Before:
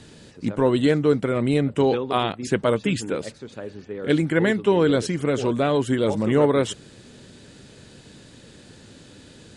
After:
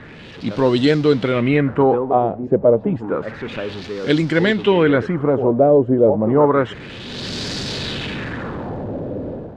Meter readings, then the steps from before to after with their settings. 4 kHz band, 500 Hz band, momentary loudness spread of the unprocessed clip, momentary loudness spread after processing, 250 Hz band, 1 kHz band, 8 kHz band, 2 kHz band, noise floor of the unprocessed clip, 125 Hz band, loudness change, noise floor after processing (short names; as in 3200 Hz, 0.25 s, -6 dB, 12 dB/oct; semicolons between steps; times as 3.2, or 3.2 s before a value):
+6.0 dB, +6.0 dB, 12 LU, 13 LU, +4.0 dB, +6.5 dB, n/a, +5.0 dB, -48 dBFS, +4.0 dB, +3.5 dB, -37 dBFS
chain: zero-crossing step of -33.5 dBFS; LFO low-pass sine 0.3 Hz 560–5000 Hz; AGC gain up to 12.5 dB; gain -2.5 dB